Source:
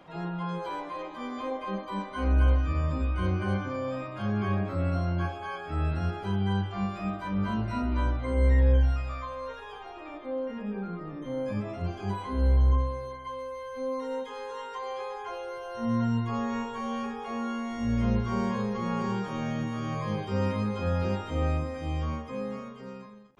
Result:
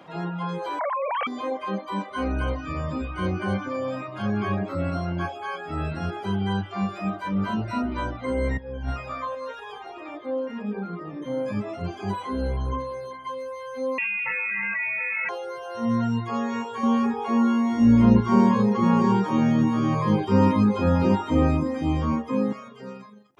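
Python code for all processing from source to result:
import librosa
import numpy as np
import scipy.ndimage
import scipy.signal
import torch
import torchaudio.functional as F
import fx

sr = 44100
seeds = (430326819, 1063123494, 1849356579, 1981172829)

y = fx.chain(x, sr, fx.sine_speech(),
    fx.air_absorb(metres=180.0),
    fx.env_flatten(amount_pct=100), at=(0.79, 1.27))
y = fx.chain(y, sr, fx.over_compress(threshold_db=-23.0, ratio=-0.5),
    fx.high_shelf(hz=2700.0, db=-6.5), at=(8.57, 9.35))
y = fx.chain(y, sr, fx.highpass(hz=170.0, slope=24),
    fx.freq_invert(carrier_hz=3000),
    fx.env_flatten(amount_pct=100), at=(13.98, 15.29))
y = fx.chain(y, sr, fx.low_shelf(hz=120.0, db=9.5),
    fx.small_body(hz=(280.0, 940.0), ring_ms=20, db=10), at=(16.83, 22.53))
y = fx.dereverb_blind(y, sr, rt60_s=0.6)
y = scipy.signal.sosfilt(scipy.signal.butter(2, 120.0, 'highpass', fs=sr, output='sos'), y)
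y = y * 10.0 ** (5.5 / 20.0)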